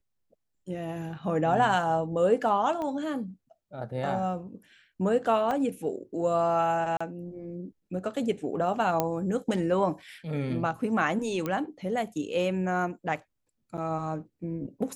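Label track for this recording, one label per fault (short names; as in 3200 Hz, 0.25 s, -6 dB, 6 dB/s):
2.820000	2.820000	pop -23 dBFS
5.510000	5.510000	gap 2.8 ms
6.970000	7.000000	gap 35 ms
9.000000	9.000000	pop -11 dBFS
11.460000	11.460000	pop -17 dBFS
13.770000	13.780000	gap 7.9 ms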